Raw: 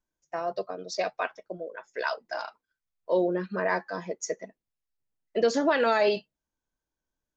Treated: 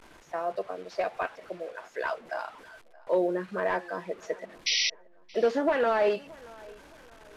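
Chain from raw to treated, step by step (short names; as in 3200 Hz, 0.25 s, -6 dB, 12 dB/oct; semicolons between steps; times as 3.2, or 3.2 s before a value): delta modulation 64 kbps, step -42 dBFS; tone controls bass -7 dB, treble -15 dB; painted sound noise, 4.66–4.9, 1900–6000 Hz -26 dBFS; tape echo 0.623 s, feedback 40%, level -22 dB, low-pass 3800 Hz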